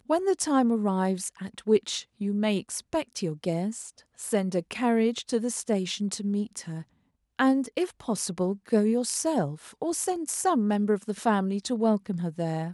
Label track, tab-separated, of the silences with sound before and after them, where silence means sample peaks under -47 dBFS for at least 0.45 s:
6.830000	7.390000	silence